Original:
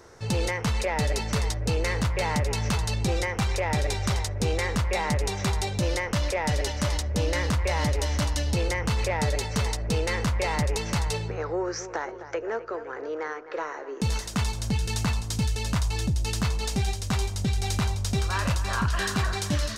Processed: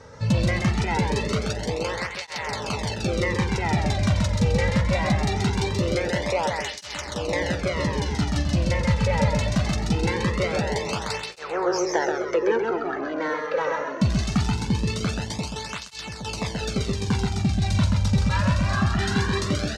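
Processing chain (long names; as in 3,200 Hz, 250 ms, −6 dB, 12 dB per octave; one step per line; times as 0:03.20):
low-pass filter 6,000 Hz 12 dB per octave
low-shelf EQ 290 Hz +5 dB
speech leveller within 4 dB 0.5 s
soft clipping −18 dBFS, distortion −18 dB
repeating echo 131 ms, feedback 44%, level −3.5 dB
through-zero flanger with one copy inverted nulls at 0.22 Hz, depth 2.9 ms
level +5.5 dB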